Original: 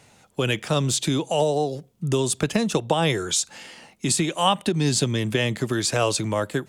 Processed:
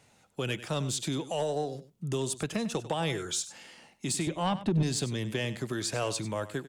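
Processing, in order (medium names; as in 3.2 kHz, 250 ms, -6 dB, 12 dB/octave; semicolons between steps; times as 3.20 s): 4.27–4.83 s: RIAA curve playback; saturation -11 dBFS, distortion -17 dB; delay 97 ms -14.5 dB; trim -8.5 dB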